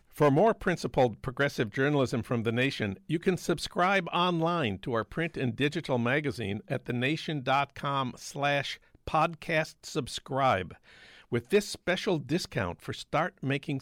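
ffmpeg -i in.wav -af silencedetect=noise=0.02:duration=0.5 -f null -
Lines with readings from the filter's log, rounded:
silence_start: 10.72
silence_end: 11.32 | silence_duration: 0.60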